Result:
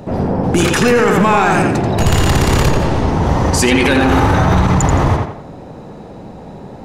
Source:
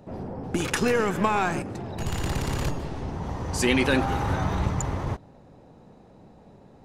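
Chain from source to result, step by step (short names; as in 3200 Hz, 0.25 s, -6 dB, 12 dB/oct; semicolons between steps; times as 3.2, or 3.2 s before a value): tape echo 85 ms, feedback 43%, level -3 dB, low-pass 3600 Hz; maximiser +19.5 dB; gain -2.5 dB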